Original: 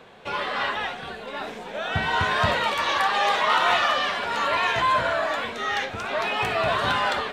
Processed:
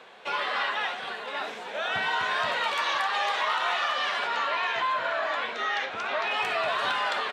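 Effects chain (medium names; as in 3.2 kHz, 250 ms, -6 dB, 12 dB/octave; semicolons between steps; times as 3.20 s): frequency weighting A; compression, threshold -24 dBFS, peak gain reduction 8 dB; 4.27–6.31 s: distance through air 80 m; delay 506 ms -14 dB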